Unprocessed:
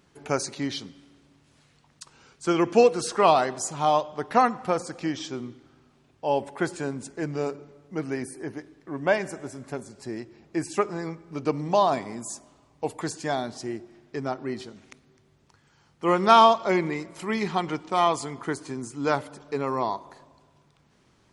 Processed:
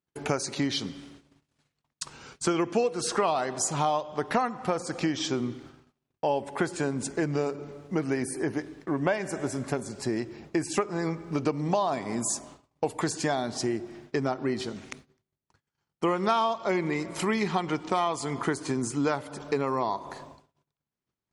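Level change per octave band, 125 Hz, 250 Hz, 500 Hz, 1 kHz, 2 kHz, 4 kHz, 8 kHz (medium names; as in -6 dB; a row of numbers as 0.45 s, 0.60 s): +1.5 dB, +0.5 dB, -3.5 dB, -6.0 dB, -1.5 dB, -1.5 dB, +3.0 dB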